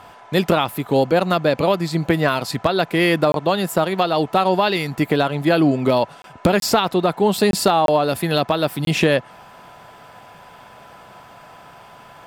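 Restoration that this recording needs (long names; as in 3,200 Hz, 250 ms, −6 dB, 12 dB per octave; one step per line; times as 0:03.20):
notch filter 1,000 Hz, Q 30
repair the gap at 0:03.32/0:06.22/0:06.60/0:07.51/0:07.86/0:08.85, 22 ms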